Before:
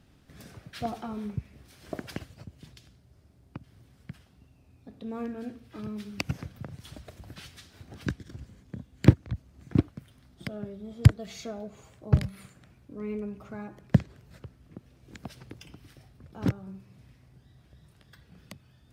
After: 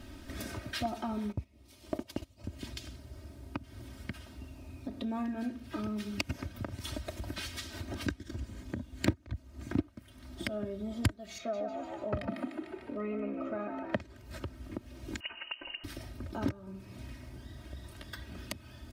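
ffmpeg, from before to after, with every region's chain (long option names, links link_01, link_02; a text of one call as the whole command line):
ffmpeg -i in.wav -filter_complex "[0:a]asettb=1/sr,asplit=3[link_01][link_02][link_03];[link_01]atrim=end=1.324[link_04];[link_02]atrim=start=1.32:end=2.44,asetpts=PTS-STARTPTS,afade=type=in:duration=0.004:curve=qsin,afade=type=out:start_time=1.116:duration=0.004:curve=qsin,agate=range=-14dB:threshold=-42dB:ratio=16:release=100:detection=peak,equalizer=frequency=1600:width=2.7:gain=-10.5[link_05];[link_03]atrim=start=2.436[link_06];[link_04][link_05]acrossfade=duration=0.004:curve1=hsin:curve2=qsin[link_07];[link_07][link_06]acrossfade=duration=0.004:curve1=qsin:curve2=hsin,asettb=1/sr,asplit=3[link_08][link_09][link_10];[link_08]atrim=end=11.384[link_11];[link_09]atrim=start=11.38:end=14,asetpts=PTS-STARTPTS,afade=type=in:duration=0.004:curve=qsin,afade=type=out:start_time=2.616:duration=0.004:curve=qsin,acrossover=split=170 3100:gain=0.158 1 0.141[link_12][link_13][link_14];[link_12][link_13][link_14]amix=inputs=3:normalize=0,aecho=1:1:1.6:0.45,atrim=end_sample=115542,asplit=7[link_15][link_16][link_17][link_18][link_19][link_20][link_21];[link_16]adelay=149,afreqshift=61,volume=-6.5dB[link_22];[link_17]adelay=298,afreqshift=122,volume=-13.1dB[link_23];[link_18]adelay=447,afreqshift=183,volume=-19.6dB[link_24];[link_19]adelay=596,afreqshift=244,volume=-26.2dB[link_25];[link_20]adelay=745,afreqshift=305,volume=-32.7dB[link_26];[link_21]adelay=894,afreqshift=366,volume=-39.3dB[link_27];[link_15][link_22][link_23][link_24][link_25][link_26][link_27]amix=inputs=7:normalize=0,atrim=end_sample=115542[link_28];[link_10]atrim=start=13.996[link_29];[link_11][link_28]acrossfade=duration=0.004:curve1=hsin:curve2=qsin[link_30];[link_30][link_29]acrossfade=duration=0.004:curve1=qsin:curve2=hsin,asettb=1/sr,asplit=3[link_31][link_32][link_33];[link_31]atrim=end=15.204[link_34];[link_32]atrim=start=15.2:end=15.84,asetpts=PTS-STARTPTS,afade=type=in:duration=0.004:curve=qsin,afade=type=out:start_time=0.636:duration=0.004:curve=qsin,highpass=160,asoftclip=type=hard:threshold=-37.5dB,lowpass=frequency=2600:width_type=q:width=0.5098,lowpass=frequency=2600:width_type=q:width=0.6013,lowpass=frequency=2600:width_type=q:width=0.9,lowpass=frequency=2600:width_type=q:width=2.563,afreqshift=-3100[link_35];[link_33]atrim=start=15.836[link_36];[link_34][link_35]acrossfade=duration=0.004:curve1=hsin:curve2=qsin[link_37];[link_37][link_36]acrossfade=duration=0.004:curve1=qsin:curve2=hsin,aecho=1:1:3.2:0.86,acompressor=threshold=-48dB:ratio=2.5,volume=10dB" out.wav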